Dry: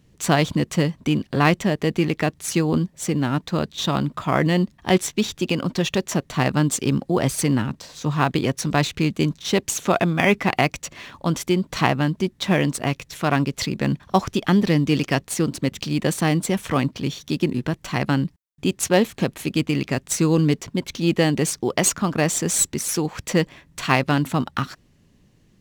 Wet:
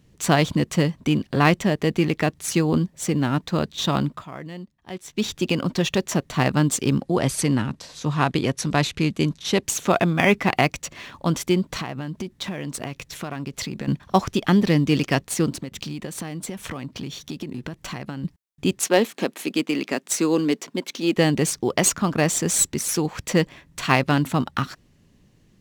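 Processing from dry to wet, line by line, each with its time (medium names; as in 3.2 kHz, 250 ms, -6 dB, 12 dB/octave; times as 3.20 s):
4.05–5.28 s: dip -17 dB, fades 0.24 s
7.03–9.63 s: Chebyshev low-pass 12 kHz, order 6
11.69–13.88 s: compression 12:1, threshold -25 dBFS
15.52–18.24 s: compression 10:1, threshold -27 dBFS
18.79–21.16 s: high-pass 230 Hz 24 dB/octave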